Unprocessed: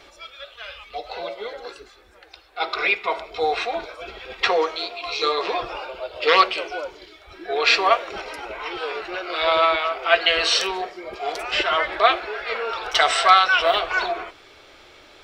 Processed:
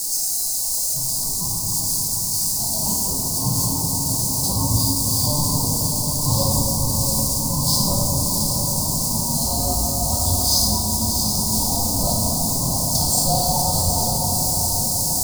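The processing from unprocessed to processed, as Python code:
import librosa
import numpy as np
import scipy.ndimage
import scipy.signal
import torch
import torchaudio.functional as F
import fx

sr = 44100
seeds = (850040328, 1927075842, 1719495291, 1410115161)

p1 = x + 0.5 * 10.0 ** (-15.5 / 20.0) * np.diff(np.sign(x), prepend=np.sign(x[:1]))
p2 = fx.graphic_eq(p1, sr, hz=(125, 250, 1000, 4000, 8000), db=(8, 12, -11, 6, 9))
p3 = p2 * np.sin(2.0 * np.pi * 590.0 * np.arange(len(p2)) / sr)
p4 = p3 + 10.0 ** (-32.0 / 20.0) * np.sin(2.0 * np.pi * 1600.0 * np.arange(len(p3)) / sr)
p5 = scipy.signal.sosfilt(scipy.signal.ellip(3, 1.0, 80, [810.0, 4700.0], 'bandstop', fs=sr, output='sos'), p4)
p6 = fx.peak_eq(p5, sr, hz=3200.0, db=-11.5, octaves=1.2)
p7 = p6 + fx.echo_diffused(p6, sr, ms=683, feedback_pct=61, wet_db=-5.5, dry=0)
y = fx.room_shoebox(p7, sr, seeds[0], volume_m3=120.0, walls='hard', distance_m=0.69)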